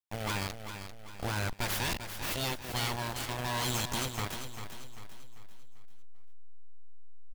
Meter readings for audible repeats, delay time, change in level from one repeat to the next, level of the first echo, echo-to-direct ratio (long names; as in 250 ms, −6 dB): 4, 394 ms, −7.5 dB, −9.0 dB, −8.0 dB